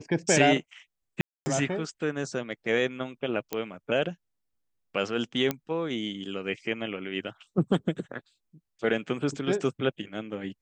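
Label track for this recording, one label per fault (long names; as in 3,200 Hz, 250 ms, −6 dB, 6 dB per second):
1.210000	1.460000	drop-out 250 ms
3.530000	3.530000	click −14 dBFS
5.510000	5.510000	click −12 dBFS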